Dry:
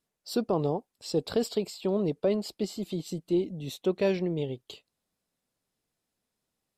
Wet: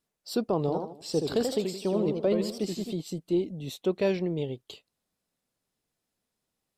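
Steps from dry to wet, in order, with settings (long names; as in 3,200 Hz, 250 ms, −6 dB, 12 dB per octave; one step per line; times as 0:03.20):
0:00.59–0:02.93: feedback echo with a swinging delay time 82 ms, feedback 37%, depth 185 cents, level −5 dB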